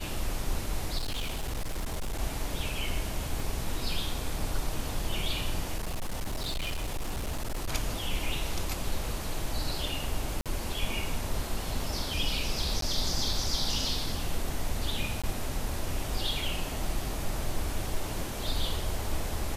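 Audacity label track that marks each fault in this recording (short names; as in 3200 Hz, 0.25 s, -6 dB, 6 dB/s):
0.970000	2.190000	clipped -28.5 dBFS
3.400000	3.400000	gap 2.1 ms
5.780000	7.690000	clipped -28.5 dBFS
10.410000	10.460000	gap 47 ms
12.810000	12.820000	gap 13 ms
15.220000	15.240000	gap 16 ms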